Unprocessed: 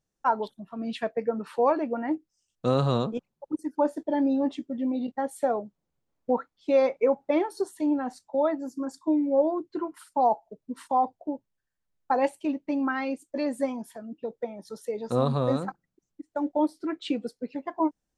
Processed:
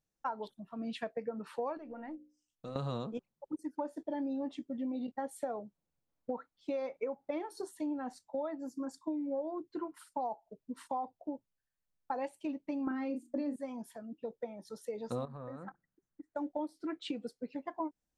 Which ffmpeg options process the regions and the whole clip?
-filter_complex "[0:a]asettb=1/sr,asplit=3[s0][s1][s2];[s0]atrim=end=1.774[s3];[s1]atrim=start=1.77:end=2.76,asetpts=PTS-STARTPTS,afade=t=in:d=0.004:c=qsin,afade=t=out:st=0.986:d=0.004:c=qsin,bandreject=f=60:t=h:w=6,bandreject=f=120:t=h:w=6,bandreject=f=180:t=h:w=6,bandreject=f=240:t=h:w=6,bandreject=f=300:t=h:w=6,bandreject=f=360:t=h:w=6,bandreject=f=420:t=h:w=6,bandreject=f=480:t=h:w=6,bandreject=f=540:t=h:w=6,acompressor=threshold=0.0224:ratio=3:attack=3.2:release=140:knee=1:detection=peak,aeval=exprs='(tanh(6.31*val(0)+0.6)-tanh(0.6))/6.31':c=same[s4];[s2]atrim=start=2.756[s5];[s3][s4]acrossfade=d=0.004:c1=hsin:c2=qsin[s6];[s6][s5]acrossfade=d=0.004:c1=qsin:c2=hsin,asettb=1/sr,asplit=3[s7][s8][s9];[s7]atrim=end=12.874[s10];[s8]atrim=start=12.87:end=13.56,asetpts=PTS-STARTPTS,afade=t=in:d=0.004:c=qsin,afade=t=out:st=0.686:d=0.004:c=qsin,equalizer=f=270:t=o:w=1.9:g=13.5,bandreject=f=60:t=h:w=6,bandreject=f=120:t=h:w=6,bandreject=f=180:t=h:w=6,bandreject=f=240:t=h:w=6,asplit=2[s11][s12];[s12]adelay=35,volume=0.447[s13];[s11][s13]amix=inputs=2:normalize=0,atrim=end_sample=30429[s14];[s9]atrim=start=13.556[s15];[s10][s14]acrossfade=d=0.004:c1=hsin:c2=qsin[s16];[s16][s15]acrossfade=d=0.004:c1=qsin:c2=hsin,asettb=1/sr,asplit=3[s17][s18][s19];[s17]atrim=end=15.254[s20];[s18]atrim=start=15.25:end=16.35,asetpts=PTS-STARTPTS,afade=t=in:d=0.004:c=qsin,afade=t=out:st=1.096:d=0.004:c=qsin,highshelf=f=2300:t=q:w=3:g=-8.5,acompressor=threshold=0.02:ratio=12:attack=3.2:release=140:knee=1:detection=peak[s21];[s19]atrim=start=16.346[s22];[s20][s21]acrossfade=d=0.004:c1=hsin:c2=qsin[s23];[s23][s22]acrossfade=d=0.004:c1=qsin:c2=hsin,bandreject=f=390:w=12,acompressor=threshold=0.0447:ratio=10,volume=0.501"

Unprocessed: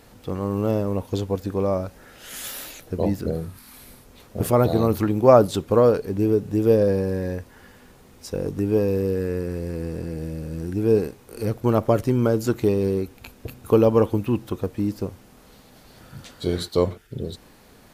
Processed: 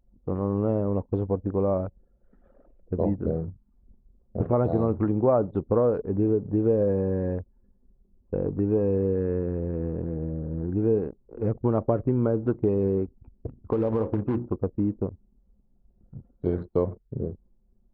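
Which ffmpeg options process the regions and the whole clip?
-filter_complex "[0:a]asettb=1/sr,asplit=3[s0][s1][s2];[s0]atrim=end=13.624[s3];[s1]atrim=start=13.62:end=14.5,asetpts=PTS-STARTPTS,afade=t=in:d=0.004:c=qsin,afade=t=out:st=0.876:d=0.004:c=qsin,acrusher=bits=3:mode=log:mix=0:aa=0.000001,bandreject=f=60:t=h:w=6,bandreject=f=120:t=h:w=6,bandreject=f=180:t=h:w=6,bandreject=f=240:t=h:w=6,bandreject=f=300:t=h:w=6,bandreject=f=360:t=h:w=6,bandreject=f=420:t=h:w=6,bandreject=f=480:t=h:w=6,bandreject=f=540:t=h:w=6,acompressor=threshold=0.126:ratio=10:attack=3.2:release=140:knee=1:detection=peak[s4];[s2]atrim=start=14.496[s5];[s3][s4]acrossfade=d=0.004:c1=hsin:c2=qsin[s6];[s6][s5]acrossfade=d=0.004:c1=qsin:c2=hsin,lowpass=1100,anlmdn=2.51,acompressor=threshold=0.1:ratio=3"

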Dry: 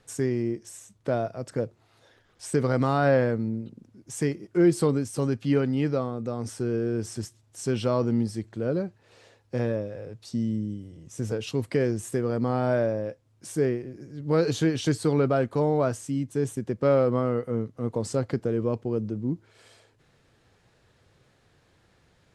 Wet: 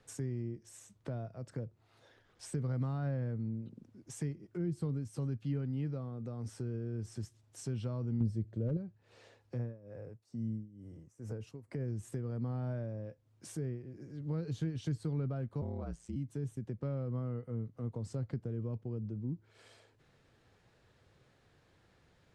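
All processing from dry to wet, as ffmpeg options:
-filter_complex "[0:a]asettb=1/sr,asplit=3[s0][s1][s2];[s0]atrim=end=8.204[s3];[s1]atrim=start=8.2:end=8.77,asetpts=PTS-STARTPTS,afade=t=in:d=0.004:c=qsin,afade=t=out:st=0.566:d=0.004:c=qsin,lowshelf=f=700:t=q:w=3:g=6,asoftclip=type=hard:threshold=0.251[s4];[s2]atrim=start=8.766[s5];[s3][s4]acrossfade=d=0.004:c1=hsin:c2=qsin[s6];[s6][s5]acrossfade=d=0.004:c1=qsin:c2=hsin,asettb=1/sr,asplit=3[s7][s8][s9];[s7]atrim=end=9.574[s10];[s8]atrim=start=9.57:end=11.88,asetpts=PTS-STARTPTS,afade=t=in:d=0.004:c=qsin,afade=t=out:st=2.306:d=0.004:c=qsin,equalizer=f=3500:t=o:w=1:g=-11.5,tremolo=f=2.2:d=0.89[s11];[s9]atrim=start=11.876[s12];[s10][s11]acrossfade=d=0.004:c1=hsin:c2=qsin[s13];[s13][s12]acrossfade=d=0.004:c1=qsin:c2=hsin,asettb=1/sr,asplit=3[s14][s15][s16];[s14]atrim=end=15.614[s17];[s15]atrim=start=15.61:end=16.16,asetpts=PTS-STARTPTS,afade=t=in:d=0.004:c=qsin,afade=t=out:st=0.546:d=0.004:c=qsin,lowpass=f=9700:w=0.5412,lowpass=f=9700:w=1.3066,aeval=exprs='val(0)*sin(2*PI*57*n/s)':c=same[s18];[s16]atrim=start=16.156[s19];[s17][s18]acrossfade=d=0.004:c1=hsin:c2=qsin[s20];[s20][s19]acrossfade=d=0.004:c1=qsin:c2=hsin,highshelf=f=6400:g=-5.5,acrossover=split=180[s21][s22];[s22]acompressor=threshold=0.00794:ratio=4[s23];[s21][s23]amix=inputs=2:normalize=0,volume=0.596"

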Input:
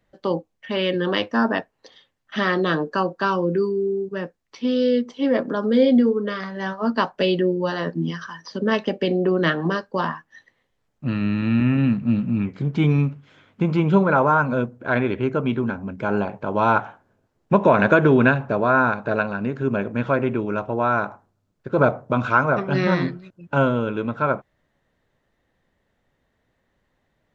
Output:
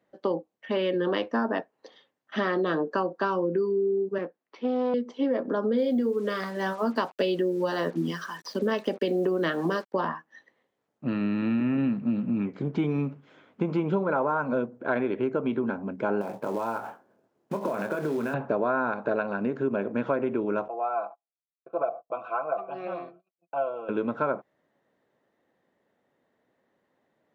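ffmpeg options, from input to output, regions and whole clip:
-filter_complex "[0:a]asettb=1/sr,asplit=3[s0][s1][s2];[s0]atrim=end=4.184[s3];[s1]atrim=start=4.18:end=4.94,asetpts=PTS-STARTPTS,afade=t=in:d=0.004:c=qsin,afade=t=out:st=0.756:d=0.004:c=qsin,aeval=exprs='clip(val(0),-1,0.0224)':c=same,highpass=190,lowpass=3500[s4];[s2]atrim=start=4.936[s5];[s3][s4]acrossfade=d=0.004:c1=hsin:c2=qsin[s6];[s6][s5]acrossfade=d=0.004:c1=qsin:c2=hsin,asettb=1/sr,asplit=3[s7][s8][s9];[s7]atrim=end=5.784[s10];[s8]atrim=start=5.78:end=9.94,asetpts=PTS-STARTPTS,afade=t=in:d=0.004:c=qsin,afade=t=out:st=4.156:d=0.004:c=qsin,highshelf=f=4100:g=11.5,acrusher=bits=6:mix=0:aa=0.5[s11];[s9]atrim=start=9.936[s12];[s10][s11]acrossfade=d=0.004:c1=hsin:c2=qsin[s13];[s13][s12]acrossfade=d=0.004:c1=qsin:c2=hsin,asettb=1/sr,asplit=3[s14][s15][s16];[s14]atrim=end=16.214[s17];[s15]atrim=start=16.21:end=18.34,asetpts=PTS-STARTPTS,afade=t=in:d=0.004:c=qsin,afade=t=out:st=2.126:d=0.004:c=qsin,acompressor=threshold=0.0631:ratio=16:attack=3.2:release=140:knee=1:detection=peak,acrusher=bits=4:mode=log:mix=0:aa=0.000001,asplit=2[s18][s19];[s19]adelay=26,volume=0.398[s20];[s18][s20]amix=inputs=2:normalize=0,atrim=end_sample=93933[s21];[s16]atrim=start=18.336[s22];[s17][s21]acrossfade=d=0.004:c1=hsin:c2=qsin[s23];[s23][s22]acrossfade=d=0.004:c1=qsin:c2=hsin,asettb=1/sr,asplit=3[s24][s25][s26];[s24]atrim=end=20.684[s27];[s25]atrim=start=20.68:end=23.89,asetpts=PTS-STARTPTS,afade=t=in:d=0.004:c=qsin,afade=t=out:st=3.206:d=0.004:c=qsin,agate=range=0.0355:threshold=0.01:ratio=16:release=100:detection=peak,asplit=3[s28][s29][s30];[s28]bandpass=f=730:t=q:w=8,volume=1[s31];[s29]bandpass=f=1090:t=q:w=8,volume=0.501[s32];[s30]bandpass=f=2440:t=q:w=8,volume=0.355[s33];[s31][s32][s33]amix=inputs=3:normalize=0,aecho=1:1:6:0.7,atrim=end_sample=141561[s34];[s26]atrim=start=23.886[s35];[s27][s34]acrossfade=d=0.004:c1=hsin:c2=qsin[s36];[s36][s35]acrossfade=d=0.004:c1=qsin:c2=hsin,highpass=270,tiltshelf=f=1300:g=5.5,acompressor=threshold=0.1:ratio=6,volume=0.75"

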